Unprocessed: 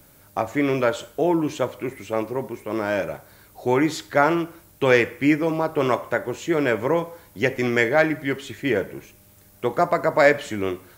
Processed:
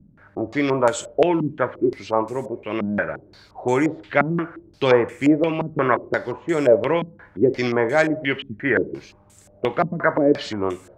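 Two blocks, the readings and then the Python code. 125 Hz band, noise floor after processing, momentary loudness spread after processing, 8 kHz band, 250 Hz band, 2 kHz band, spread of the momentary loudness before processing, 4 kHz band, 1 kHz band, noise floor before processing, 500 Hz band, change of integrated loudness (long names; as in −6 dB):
+1.5 dB, −53 dBFS, 10 LU, can't be measured, +1.5 dB, −1.0 dB, 11 LU, +0.5 dB, +0.5 dB, −53 dBFS, +1.5 dB, +1.0 dB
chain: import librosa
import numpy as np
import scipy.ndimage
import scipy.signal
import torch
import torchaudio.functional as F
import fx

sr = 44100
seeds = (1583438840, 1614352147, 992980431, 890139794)

y = fx.filter_held_lowpass(x, sr, hz=5.7, low_hz=210.0, high_hz=7800.0)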